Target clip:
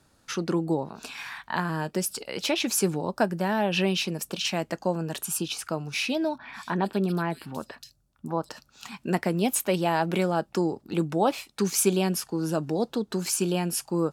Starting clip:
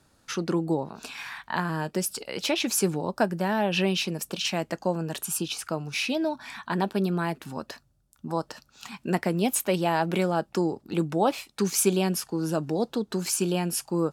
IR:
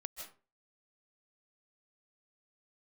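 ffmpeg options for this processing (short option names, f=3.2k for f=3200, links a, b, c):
-filter_complex "[0:a]asettb=1/sr,asplit=3[a][b][c];[a]atrim=end=6.384[d];[b]atrim=start=6.38:end=8.49,asetpts=PTS-STARTPTS,afade=t=in:d=0.004:c=qsin,afade=t=out:st=2.106:d=0.004:c=qsin,acrossover=split=3300[e][f];[f]adelay=130[g];[e][g]amix=inputs=2:normalize=0,atrim=end_sample=93051[h];[c]atrim=start=8.486[i];[d][h]acrossfade=d=0.004:c1=hsin:c2=qsin[j];[j][i]acrossfade=d=0.004:c1=qsin:c2=hsin"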